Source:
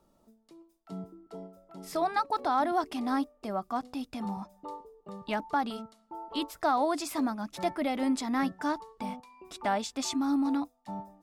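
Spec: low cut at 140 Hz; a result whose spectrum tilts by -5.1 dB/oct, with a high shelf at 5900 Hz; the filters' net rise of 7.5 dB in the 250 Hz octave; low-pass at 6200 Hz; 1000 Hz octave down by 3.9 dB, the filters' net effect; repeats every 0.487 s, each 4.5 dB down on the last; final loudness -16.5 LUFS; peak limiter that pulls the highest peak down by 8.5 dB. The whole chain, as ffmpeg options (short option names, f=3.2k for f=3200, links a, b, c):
-af "highpass=140,lowpass=6.2k,equalizer=f=250:t=o:g=9,equalizer=f=1k:t=o:g=-6,highshelf=f=5.9k:g=-5,alimiter=limit=-21dB:level=0:latency=1,aecho=1:1:487|974|1461|1948|2435|2922|3409|3896|4383:0.596|0.357|0.214|0.129|0.0772|0.0463|0.0278|0.0167|0.01,volume=13dB"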